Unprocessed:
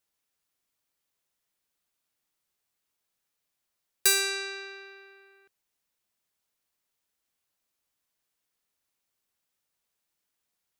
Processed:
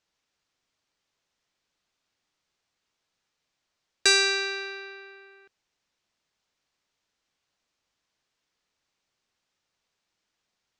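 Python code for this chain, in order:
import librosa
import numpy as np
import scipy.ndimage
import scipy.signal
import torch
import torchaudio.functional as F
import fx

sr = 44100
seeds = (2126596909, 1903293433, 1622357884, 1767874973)

y = scipy.signal.sosfilt(scipy.signal.butter(4, 6400.0, 'lowpass', fs=sr, output='sos'), x)
y = y * 10.0 ** (6.0 / 20.0)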